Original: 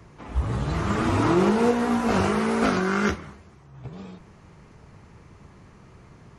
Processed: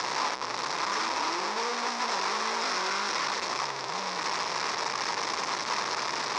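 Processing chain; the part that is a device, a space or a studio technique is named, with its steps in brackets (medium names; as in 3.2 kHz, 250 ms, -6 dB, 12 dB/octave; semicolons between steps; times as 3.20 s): 2.84–3.26 s: hum notches 60/120/180 Hz; home computer beeper (one-bit comparator; cabinet simulation 640–5900 Hz, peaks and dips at 670 Hz -4 dB, 1 kHz +6 dB, 1.5 kHz -3 dB, 3 kHz -7 dB, 5.4 kHz +8 dB)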